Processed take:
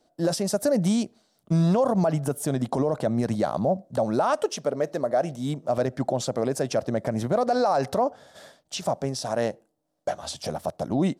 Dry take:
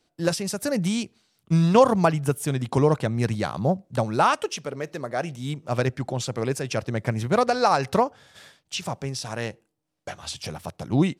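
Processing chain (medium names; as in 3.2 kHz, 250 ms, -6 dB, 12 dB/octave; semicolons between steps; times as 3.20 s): fifteen-band graphic EQ 100 Hz -5 dB, 250 Hz +5 dB, 630 Hz +12 dB, 2.5 kHz -8 dB; peak limiter -14.5 dBFS, peak gain reduction 14.5 dB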